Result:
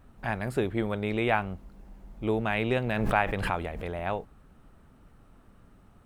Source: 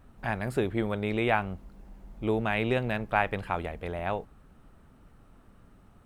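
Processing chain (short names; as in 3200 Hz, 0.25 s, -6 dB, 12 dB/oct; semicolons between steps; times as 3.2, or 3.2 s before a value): 2.72–3.92 backwards sustainer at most 32 dB/s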